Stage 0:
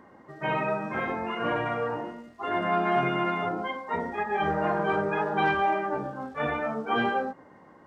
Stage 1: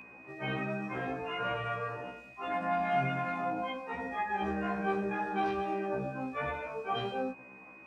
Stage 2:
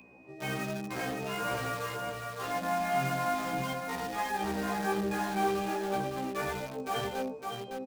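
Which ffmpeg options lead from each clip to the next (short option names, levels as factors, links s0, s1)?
-filter_complex "[0:a]acrossover=split=200|3000[s0][s1][s2];[s1]acompressor=threshold=0.0158:ratio=1.5[s3];[s0][s3][s2]amix=inputs=3:normalize=0,aeval=exprs='val(0)+0.01*sin(2*PI*2500*n/s)':c=same,afftfilt=real='re*1.73*eq(mod(b,3),0)':imag='im*1.73*eq(mod(b,3),0)':win_size=2048:overlap=0.75"
-filter_complex "[0:a]acrossover=split=130|940|2600[s0][s1][s2][s3];[s2]acrusher=bits=6:mix=0:aa=0.000001[s4];[s0][s1][s4][s3]amix=inputs=4:normalize=0,aecho=1:1:559:0.596"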